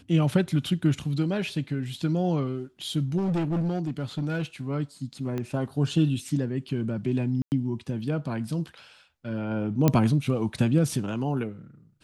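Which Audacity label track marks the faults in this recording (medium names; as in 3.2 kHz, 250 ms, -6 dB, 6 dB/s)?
3.170000	4.430000	clipped -23 dBFS
5.380000	5.380000	pop -19 dBFS
7.420000	7.520000	dropout 99 ms
9.880000	9.880000	pop -7 dBFS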